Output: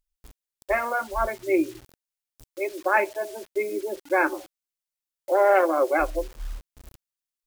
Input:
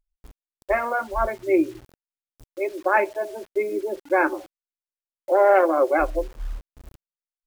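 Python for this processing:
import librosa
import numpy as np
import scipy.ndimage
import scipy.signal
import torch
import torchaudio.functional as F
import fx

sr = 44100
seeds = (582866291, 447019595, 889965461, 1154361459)

y = fx.high_shelf(x, sr, hz=2500.0, db=9.0)
y = y * librosa.db_to_amplitude(-3.0)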